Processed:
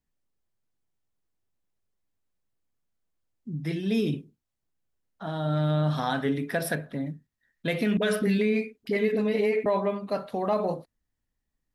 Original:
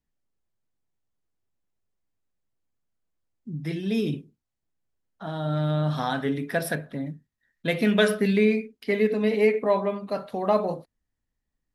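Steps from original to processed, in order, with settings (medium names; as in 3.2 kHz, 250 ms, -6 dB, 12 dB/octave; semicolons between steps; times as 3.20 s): peak limiter -16 dBFS, peak gain reduction 8.5 dB; 7.97–9.66 s: phase dispersion highs, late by 46 ms, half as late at 440 Hz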